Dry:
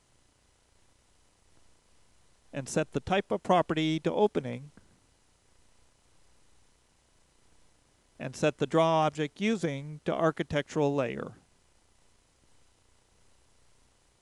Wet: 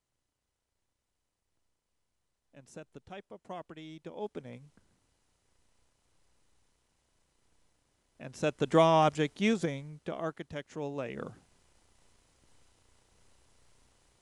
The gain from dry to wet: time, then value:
3.89 s -18.5 dB
4.64 s -8 dB
8.22 s -8 dB
8.77 s +1.5 dB
9.42 s +1.5 dB
10.35 s -10.5 dB
10.89 s -10.5 dB
11.29 s -1 dB

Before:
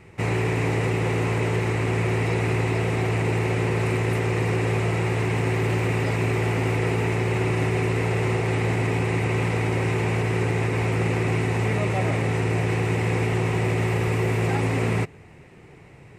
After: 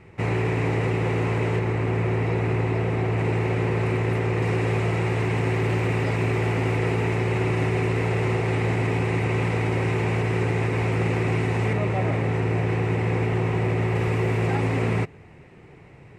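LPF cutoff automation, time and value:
LPF 6 dB/oct
3100 Hz
from 1.59 s 1700 Hz
from 3.18 s 2600 Hz
from 4.42 s 4800 Hz
from 11.73 s 2200 Hz
from 13.95 s 3700 Hz

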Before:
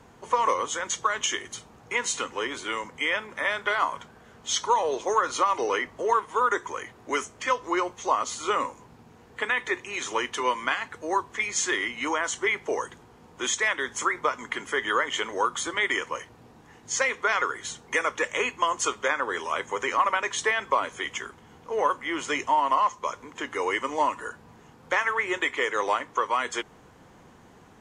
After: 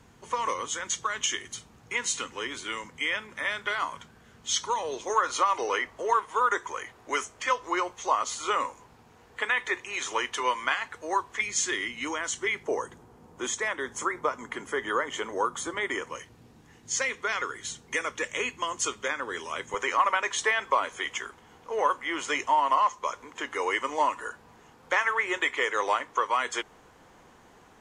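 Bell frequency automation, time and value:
bell -7.5 dB 2.4 oct
650 Hz
from 5.1 s 190 Hz
from 11.41 s 810 Hz
from 12.63 s 3100 Hz
from 16.1 s 850 Hz
from 19.74 s 140 Hz

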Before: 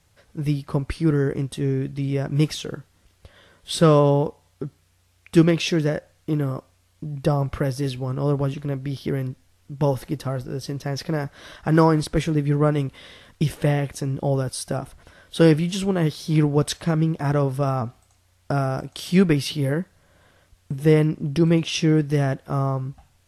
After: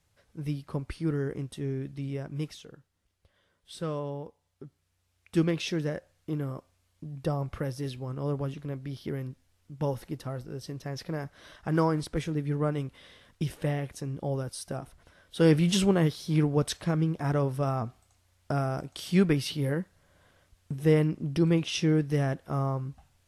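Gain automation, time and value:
2.07 s -9.5 dB
2.72 s -18 dB
4.25 s -18 dB
5.51 s -9 dB
15.37 s -9 dB
15.73 s +2 dB
16.19 s -6 dB

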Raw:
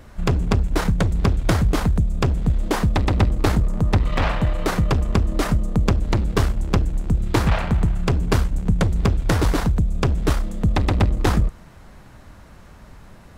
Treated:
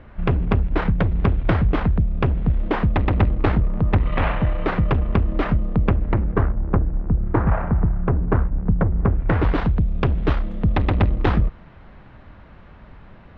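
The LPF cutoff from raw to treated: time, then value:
LPF 24 dB/oct
5.73 s 2900 Hz
6.52 s 1600 Hz
9.02 s 1600 Hz
9.6 s 3300 Hz

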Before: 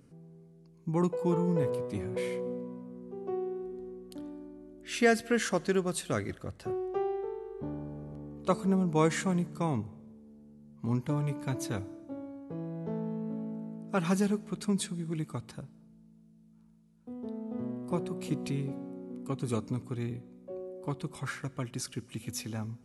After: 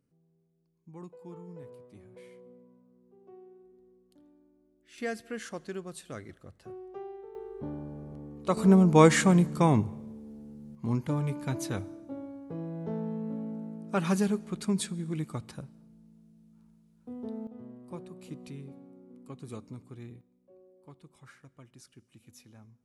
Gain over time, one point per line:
-17.5 dB
from 4.98 s -10 dB
from 7.35 s 0 dB
from 8.57 s +8 dB
from 10.75 s +1 dB
from 17.47 s -10 dB
from 20.21 s -17 dB

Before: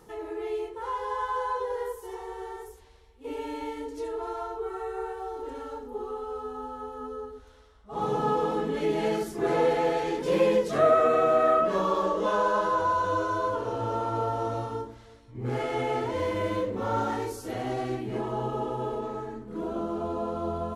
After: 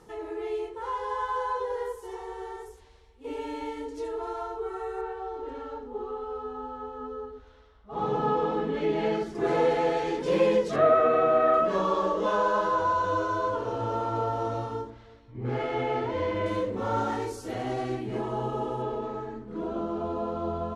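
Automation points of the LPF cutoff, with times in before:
9200 Hz
from 5.01 s 4000 Hz
from 9.35 s 7600 Hz
from 10.76 s 3500 Hz
from 11.54 s 7200 Hz
from 14.9 s 4000 Hz
from 16.46 s 9600 Hz
from 18.82 s 5300 Hz

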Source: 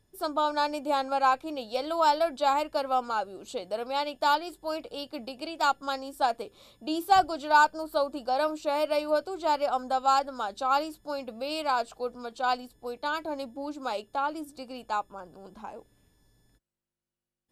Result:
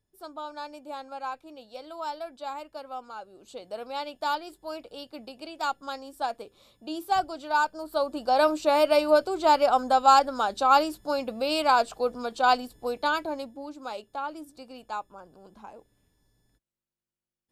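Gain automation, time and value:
3.18 s -11 dB
3.76 s -4 dB
7.67 s -4 dB
8.43 s +6 dB
13.02 s +6 dB
13.68 s -4 dB

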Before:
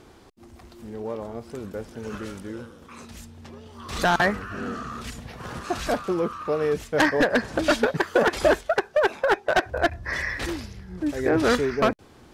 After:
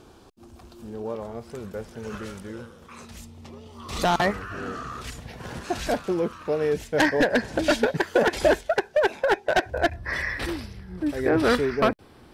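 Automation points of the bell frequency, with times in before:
bell -12 dB 0.23 oct
2000 Hz
from 1.15 s 290 Hz
from 3.18 s 1600 Hz
from 4.31 s 220 Hz
from 5.26 s 1200 Hz
from 9.96 s 6700 Hz

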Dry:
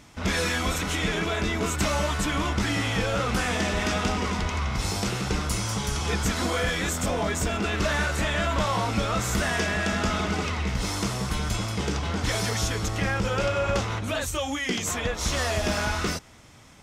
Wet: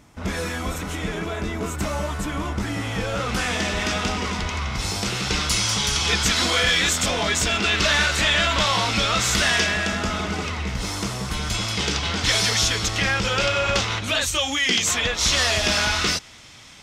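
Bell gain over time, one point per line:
bell 3800 Hz 2.4 oct
2.75 s -5.5 dB
3.42 s +5 dB
5.01 s +5 dB
5.41 s +13.5 dB
9.51 s +13.5 dB
10.02 s +2.5 dB
11.24 s +2.5 dB
11.75 s +12.5 dB

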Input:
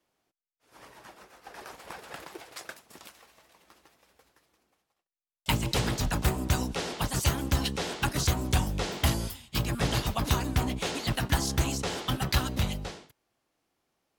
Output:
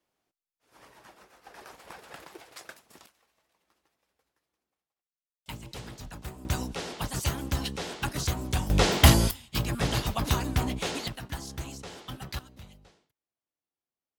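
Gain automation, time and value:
-3.5 dB
from 3.06 s -14 dB
from 6.45 s -3 dB
from 8.7 s +9 dB
from 9.31 s 0 dB
from 11.08 s -10.5 dB
from 12.39 s -20 dB

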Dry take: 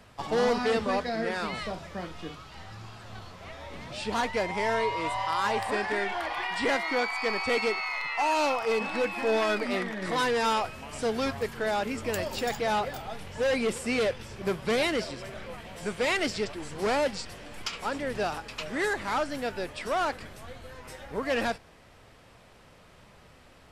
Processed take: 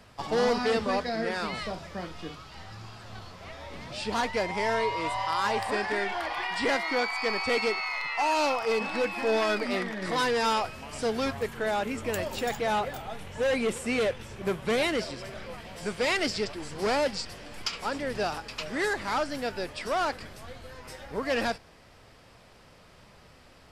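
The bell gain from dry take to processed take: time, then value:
bell 4900 Hz 0.34 oct
11.03 s +4 dB
11.51 s -5 dB
14.7 s -5 dB
15.29 s +5.5 dB

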